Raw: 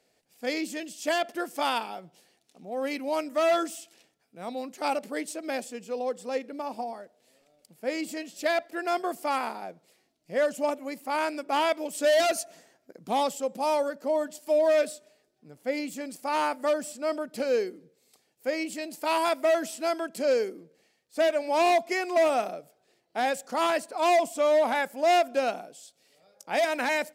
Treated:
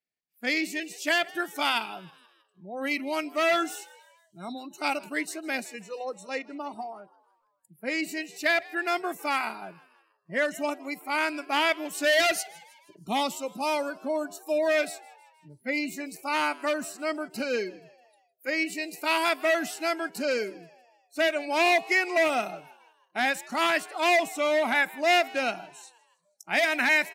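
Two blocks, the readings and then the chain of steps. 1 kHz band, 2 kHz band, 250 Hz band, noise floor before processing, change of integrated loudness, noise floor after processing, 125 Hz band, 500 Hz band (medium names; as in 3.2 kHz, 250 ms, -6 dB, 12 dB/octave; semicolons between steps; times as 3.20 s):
-1.0 dB, +7.0 dB, +0.5 dB, -71 dBFS, +1.0 dB, -71 dBFS, no reading, -3.0 dB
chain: ten-band graphic EQ 500 Hz -8 dB, 1 kHz -5 dB, 2 kHz +6 dB, 8 kHz -4 dB; spectral noise reduction 28 dB; frequency-shifting echo 159 ms, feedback 52%, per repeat +80 Hz, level -22.5 dB; trim +4 dB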